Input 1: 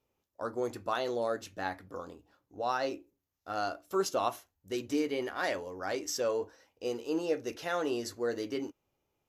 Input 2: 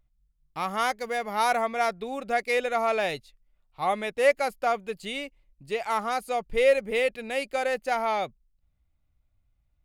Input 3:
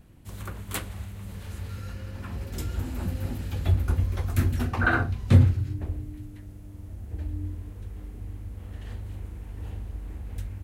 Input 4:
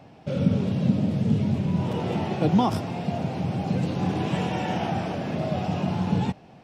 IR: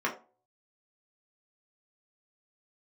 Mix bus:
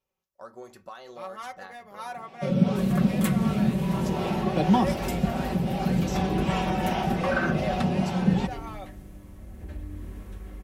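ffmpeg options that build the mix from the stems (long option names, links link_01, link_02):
-filter_complex "[0:a]equalizer=frequency=320:width=1.4:gain=-7,acompressor=threshold=-36dB:ratio=6,volume=-5dB,asplit=2[link_01][link_02];[link_02]volume=-23dB[link_03];[1:a]bandreject=frequency=2200:width=16,adelay=600,volume=-17dB,asplit=2[link_04][link_05];[link_05]volume=-14dB[link_06];[2:a]acompressor=threshold=-29dB:ratio=6,tremolo=f=0.79:d=0.3,adelay=2500,volume=1.5dB,asplit=2[link_07][link_08];[link_08]volume=-12.5dB[link_09];[3:a]highpass=140,acrossover=split=450[link_10][link_11];[link_10]aeval=exprs='val(0)*(1-0.5/2+0.5/2*cos(2*PI*2.6*n/s))':channel_layout=same[link_12];[link_11]aeval=exprs='val(0)*(1-0.5/2-0.5/2*cos(2*PI*2.6*n/s))':channel_layout=same[link_13];[link_12][link_13]amix=inputs=2:normalize=0,adelay=2150,volume=1.5dB[link_14];[4:a]atrim=start_sample=2205[link_15];[link_03][link_06][link_09]amix=inputs=3:normalize=0[link_16];[link_16][link_15]afir=irnorm=-1:irlink=0[link_17];[link_01][link_04][link_07][link_14][link_17]amix=inputs=5:normalize=0,aecho=1:1:5.3:0.55"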